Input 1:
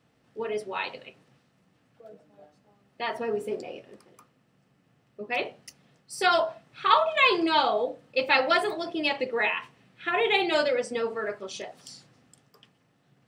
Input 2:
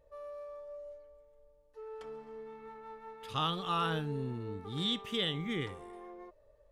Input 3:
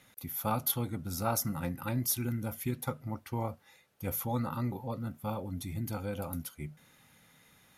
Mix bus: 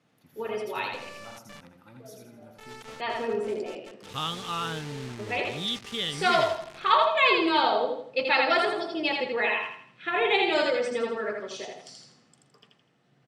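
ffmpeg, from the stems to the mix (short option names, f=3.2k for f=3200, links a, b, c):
-filter_complex "[0:a]highpass=120,volume=-1.5dB,asplit=2[a][b];[b]volume=-3.5dB[c];[1:a]acrusher=bits=6:mix=0:aa=0.000001,adynamicequalizer=threshold=0.00562:dfrequency=1500:dqfactor=0.7:tfrequency=1500:tqfactor=0.7:attack=5:release=100:ratio=0.375:range=2.5:mode=boostabove:tftype=highshelf,adelay=800,volume=-1dB[d];[2:a]highpass=140,volume=-16.5dB,asplit=2[e][f];[f]volume=-4dB[g];[c][g]amix=inputs=2:normalize=0,aecho=0:1:82|164|246|328|410:1|0.39|0.152|0.0593|0.0231[h];[a][d][e][h]amix=inputs=4:normalize=0,lowpass=7.7k"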